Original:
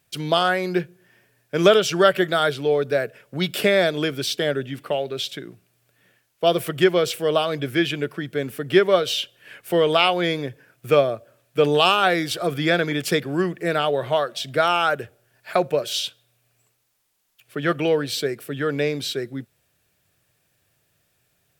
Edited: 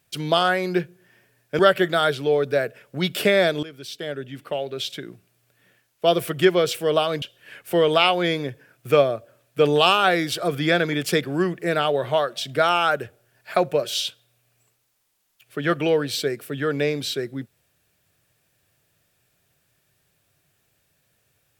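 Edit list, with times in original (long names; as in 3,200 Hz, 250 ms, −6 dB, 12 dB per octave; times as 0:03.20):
0:01.59–0:01.98: remove
0:04.02–0:05.44: fade in, from −17.5 dB
0:07.61–0:09.21: remove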